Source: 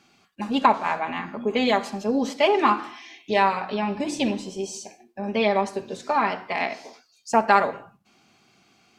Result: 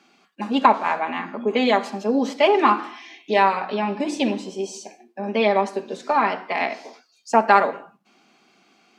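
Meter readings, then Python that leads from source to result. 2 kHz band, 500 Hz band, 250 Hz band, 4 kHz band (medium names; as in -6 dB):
+2.0 dB, +3.0 dB, +2.0 dB, +1.0 dB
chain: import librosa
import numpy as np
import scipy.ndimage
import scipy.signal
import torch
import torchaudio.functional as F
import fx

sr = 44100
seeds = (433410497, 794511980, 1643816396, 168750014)

y = scipy.signal.sosfilt(scipy.signal.butter(4, 200.0, 'highpass', fs=sr, output='sos'), x)
y = fx.high_shelf(y, sr, hz=5400.0, db=-7.5)
y = F.gain(torch.from_numpy(y), 3.0).numpy()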